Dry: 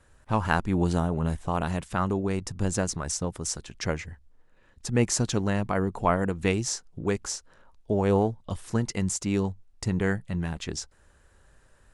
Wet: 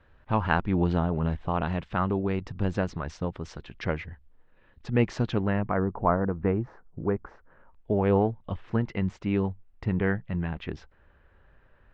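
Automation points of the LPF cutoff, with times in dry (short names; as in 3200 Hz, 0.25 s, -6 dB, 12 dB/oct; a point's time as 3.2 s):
LPF 24 dB/oct
5.24 s 3500 Hz
5.98 s 1500 Hz
7.2 s 1500 Hz
7.91 s 2900 Hz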